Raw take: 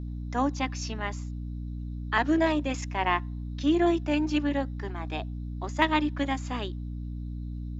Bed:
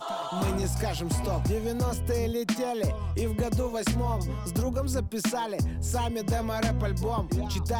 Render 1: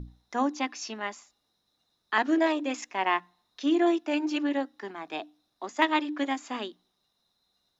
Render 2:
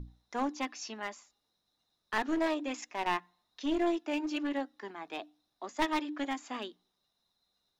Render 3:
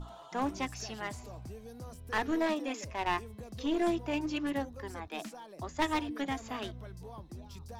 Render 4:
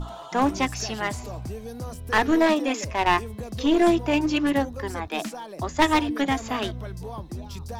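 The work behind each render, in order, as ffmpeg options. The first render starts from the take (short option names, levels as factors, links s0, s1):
-af "bandreject=f=60:t=h:w=6,bandreject=f=120:t=h:w=6,bandreject=f=180:t=h:w=6,bandreject=f=240:t=h:w=6,bandreject=f=300:t=h:w=6"
-af "flanger=delay=0.9:depth=1.6:regen=80:speed=1.1:shape=triangular,aeval=exprs='clip(val(0),-1,0.0299)':c=same"
-filter_complex "[1:a]volume=0.126[s0];[0:a][s0]amix=inputs=2:normalize=0"
-af "volume=3.55"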